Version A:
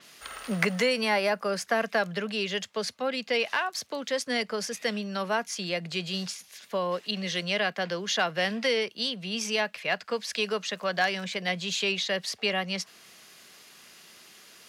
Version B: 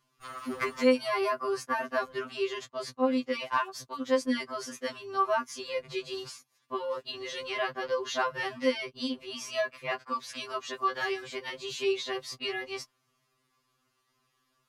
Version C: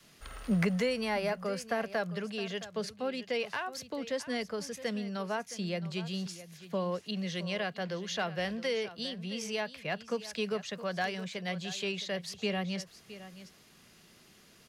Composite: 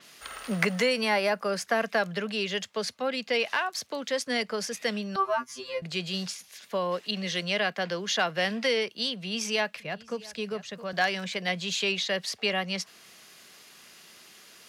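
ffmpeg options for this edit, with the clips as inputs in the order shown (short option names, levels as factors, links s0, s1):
-filter_complex "[0:a]asplit=3[s0][s1][s2];[s0]atrim=end=5.162[s3];[1:a]atrim=start=5.158:end=5.822[s4];[s1]atrim=start=5.818:end=9.802[s5];[2:a]atrim=start=9.798:end=10.932[s6];[s2]atrim=start=10.928[s7];[s3][s4]acrossfade=d=0.004:c1=hsin:c2=hsin[s8];[s8][s5]acrossfade=d=0.004:c1=hsin:c2=hsin[s9];[s9][s6]acrossfade=d=0.004:c1=hsin:c2=hsin[s10];[s10][s7]acrossfade=d=0.004:c1=hsin:c2=hsin"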